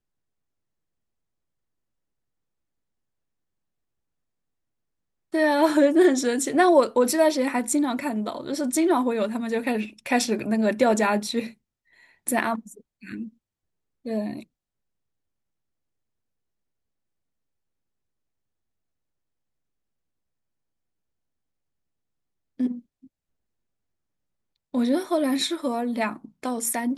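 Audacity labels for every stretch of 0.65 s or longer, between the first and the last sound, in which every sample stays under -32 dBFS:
11.480000	12.270000	silence
13.250000	14.060000	silence
14.400000	22.600000	silence
22.770000	24.740000	silence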